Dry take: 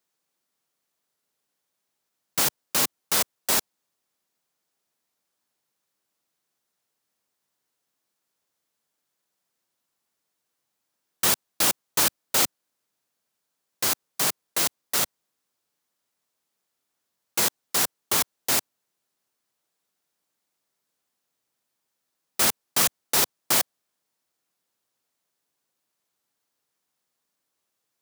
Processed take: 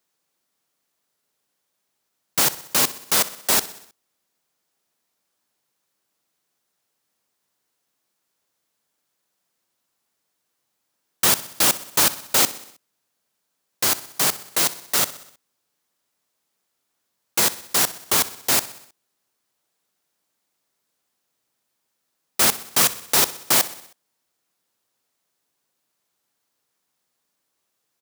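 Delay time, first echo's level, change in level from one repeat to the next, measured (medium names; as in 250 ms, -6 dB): 63 ms, -17.0 dB, -4.5 dB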